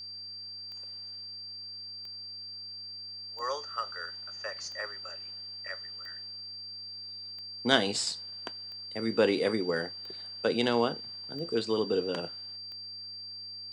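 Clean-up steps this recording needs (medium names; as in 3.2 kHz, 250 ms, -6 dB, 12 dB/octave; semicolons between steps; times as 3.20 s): de-click; de-hum 93.3 Hz, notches 4; band-stop 4.7 kHz, Q 30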